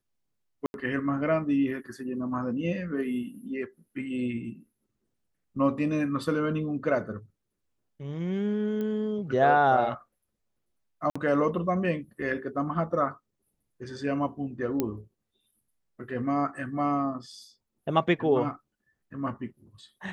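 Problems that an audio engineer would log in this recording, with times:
0.66–0.74 s: dropout 81 ms
8.81 s: pop -23 dBFS
11.10–11.15 s: dropout 55 ms
14.80 s: pop -13 dBFS

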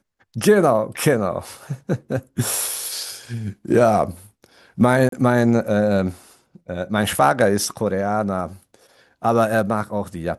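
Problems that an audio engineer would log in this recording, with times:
5.09–5.12 s: dropout 33 ms

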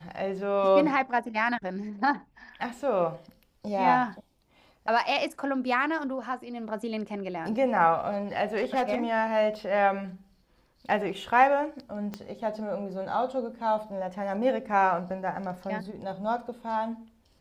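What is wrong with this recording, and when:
8.55–9.03 s: clipped -21 dBFS
12.14 s: pop -21 dBFS

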